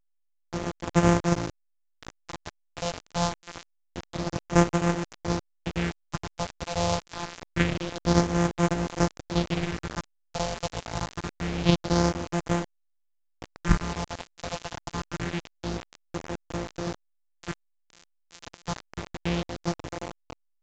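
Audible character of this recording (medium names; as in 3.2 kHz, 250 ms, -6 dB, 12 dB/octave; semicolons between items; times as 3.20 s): a buzz of ramps at a fixed pitch in blocks of 256 samples; phasing stages 4, 0.26 Hz, lowest notch 270–4000 Hz; a quantiser's noise floor 6-bit, dither none; A-law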